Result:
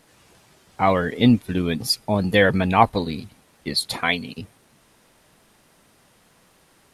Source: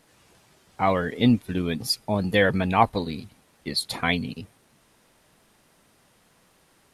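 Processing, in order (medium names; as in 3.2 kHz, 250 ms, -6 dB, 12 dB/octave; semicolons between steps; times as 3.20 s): 3.97–4.38 s: bass shelf 240 Hz -12 dB; trim +3.5 dB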